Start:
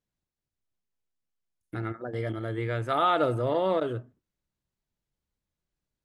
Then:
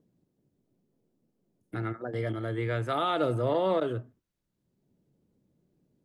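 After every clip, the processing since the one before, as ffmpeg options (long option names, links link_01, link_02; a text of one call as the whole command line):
ffmpeg -i in.wav -filter_complex "[0:a]acrossover=split=130|480|2500[link_01][link_02][link_03][link_04];[link_02]acompressor=mode=upward:threshold=-51dB:ratio=2.5[link_05];[link_03]alimiter=limit=-22.5dB:level=0:latency=1:release=249[link_06];[link_01][link_05][link_06][link_04]amix=inputs=4:normalize=0" out.wav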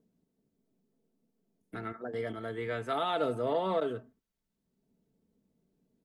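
ffmpeg -i in.wav -af "equalizer=frequency=130:width=1.5:gain=-3,aecho=1:1:4.5:0.52,volume=-3.5dB" out.wav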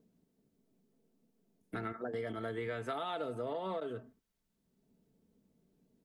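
ffmpeg -i in.wav -af "acompressor=threshold=-37dB:ratio=12,volume=2.5dB" out.wav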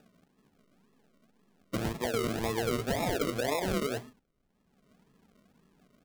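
ffmpeg -i in.wav -af "acrusher=samples=41:mix=1:aa=0.000001:lfo=1:lforange=24.6:lforate=1.9,volume=7.5dB" out.wav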